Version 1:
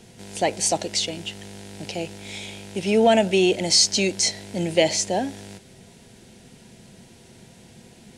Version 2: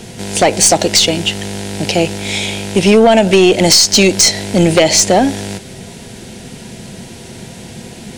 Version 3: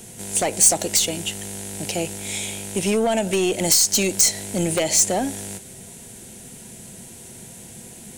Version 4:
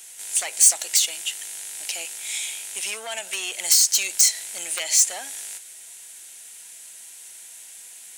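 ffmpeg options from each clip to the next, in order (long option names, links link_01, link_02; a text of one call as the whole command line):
ffmpeg -i in.wav -af "acompressor=threshold=-20dB:ratio=12,aeval=exprs='0.266*(cos(1*acos(clip(val(0)/0.266,-1,1)))-cos(1*PI/2))+0.0531*(cos(2*acos(clip(val(0)/0.266,-1,1)))-cos(2*PI/2))+0.00944*(cos(6*acos(clip(val(0)/0.266,-1,1)))-cos(6*PI/2))+0.00596*(cos(8*acos(clip(val(0)/0.266,-1,1)))-cos(8*PI/2))':channel_layout=same,aeval=exprs='0.376*sin(PI/2*2*val(0)/0.376)':channel_layout=same,volume=7dB" out.wav
ffmpeg -i in.wav -af "aexciter=amount=4.4:drive=6.1:freq=6800,volume=-12.5dB" out.wav
ffmpeg -i in.wav -af "highpass=1500" out.wav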